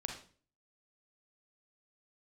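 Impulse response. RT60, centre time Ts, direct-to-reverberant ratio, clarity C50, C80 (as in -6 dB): 0.45 s, 25 ms, 2.5 dB, 5.0 dB, 10.0 dB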